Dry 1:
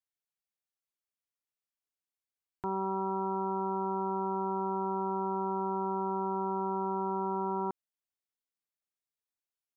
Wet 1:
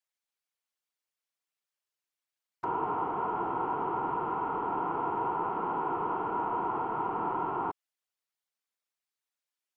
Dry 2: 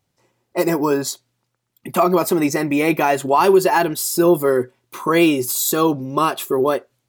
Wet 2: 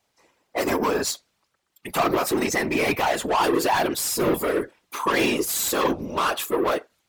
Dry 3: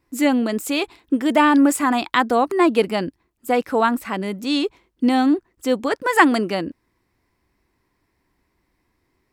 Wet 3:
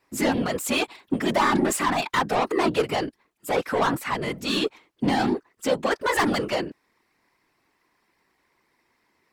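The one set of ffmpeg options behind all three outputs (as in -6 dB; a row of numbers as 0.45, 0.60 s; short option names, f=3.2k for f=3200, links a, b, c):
-filter_complex "[0:a]asplit=2[a][b];[b]highpass=f=720:p=1,volume=24dB,asoftclip=type=tanh:threshold=-1dB[c];[a][c]amix=inputs=2:normalize=0,lowpass=f=6.8k:p=1,volume=-6dB,afftfilt=real='hypot(re,im)*cos(2*PI*random(0))':imag='hypot(re,im)*sin(2*PI*random(1))':win_size=512:overlap=0.75,volume=-7dB"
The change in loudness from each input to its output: +1.0, -5.5, -5.0 LU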